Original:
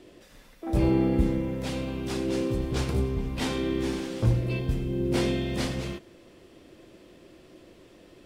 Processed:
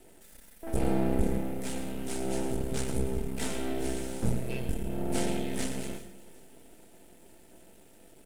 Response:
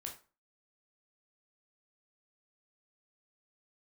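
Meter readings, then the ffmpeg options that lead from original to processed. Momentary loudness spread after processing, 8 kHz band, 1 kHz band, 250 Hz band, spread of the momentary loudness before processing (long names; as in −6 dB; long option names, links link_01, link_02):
8 LU, +4.0 dB, −1.5 dB, −5.5 dB, 8 LU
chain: -filter_complex "[0:a]highshelf=frequency=6800:width_type=q:width=1.5:gain=13,aeval=exprs='max(val(0),0)':channel_layout=same,bandreject=frequency=1100:width=5.3,aecho=1:1:4.5:0.32,aecho=1:1:378|756|1134:0.0891|0.0365|0.015,asplit=2[link_01][link_02];[1:a]atrim=start_sample=2205,adelay=112[link_03];[link_02][link_03]afir=irnorm=-1:irlink=0,volume=-8.5dB[link_04];[link_01][link_04]amix=inputs=2:normalize=0,acrossover=split=9600[link_05][link_06];[link_06]acompressor=threshold=-51dB:ratio=4:attack=1:release=60[link_07];[link_05][link_07]amix=inputs=2:normalize=0,volume=-1dB"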